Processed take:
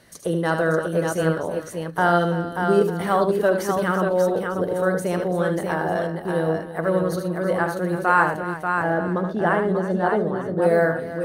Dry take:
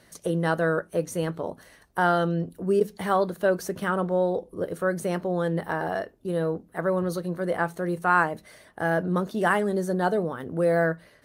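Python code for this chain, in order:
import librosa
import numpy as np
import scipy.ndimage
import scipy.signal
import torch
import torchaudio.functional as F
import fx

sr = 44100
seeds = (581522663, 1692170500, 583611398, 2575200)

y = fx.lowpass(x, sr, hz=1500.0, slope=6, at=(8.34, 10.62))
y = fx.echo_multitap(y, sr, ms=(75, 120, 334, 587, 897), db=(-7.0, -18.5, -13.5, -5.0, -17.0))
y = y * librosa.db_to_amplitude(2.5)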